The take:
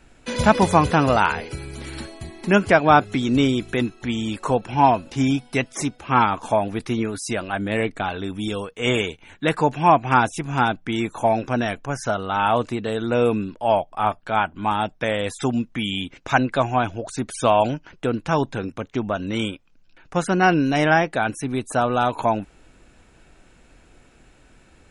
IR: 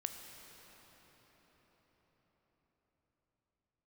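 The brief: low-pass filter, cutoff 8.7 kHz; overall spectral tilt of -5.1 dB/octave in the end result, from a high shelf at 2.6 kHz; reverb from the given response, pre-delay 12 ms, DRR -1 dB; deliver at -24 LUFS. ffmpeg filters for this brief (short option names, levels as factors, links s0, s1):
-filter_complex "[0:a]lowpass=8700,highshelf=f=2600:g=-5.5,asplit=2[s0][s1];[1:a]atrim=start_sample=2205,adelay=12[s2];[s1][s2]afir=irnorm=-1:irlink=0,volume=1.26[s3];[s0][s3]amix=inputs=2:normalize=0,volume=0.562"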